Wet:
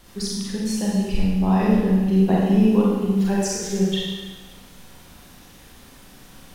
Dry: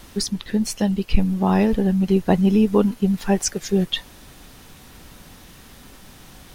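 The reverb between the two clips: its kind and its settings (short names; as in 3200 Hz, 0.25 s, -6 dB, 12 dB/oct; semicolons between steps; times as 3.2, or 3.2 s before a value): Schroeder reverb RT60 1.3 s, combs from 32 ms, DRR -5.5 dB; gain -8 dB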